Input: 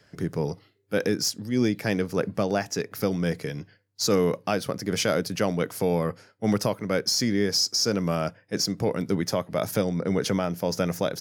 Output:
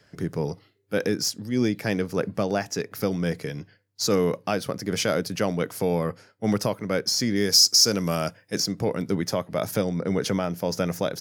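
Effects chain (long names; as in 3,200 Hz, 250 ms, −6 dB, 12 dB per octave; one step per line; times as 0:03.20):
0:07.36–0:08.60: high-shelf EQ 4,300 Hz +12 dB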